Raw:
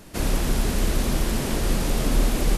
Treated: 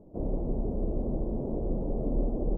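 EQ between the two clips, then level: inverse Chebyshev low-pass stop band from 1.6 kHz, stop band 50 dB; bass shelf 340 Hz -8.5 dB; 0.0 dB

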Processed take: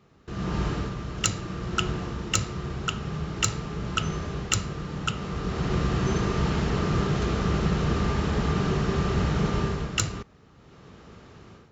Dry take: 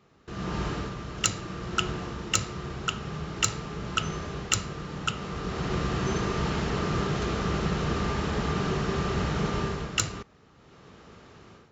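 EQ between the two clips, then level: bass shelf 250 Hz +5.5 dB; 0.0 dB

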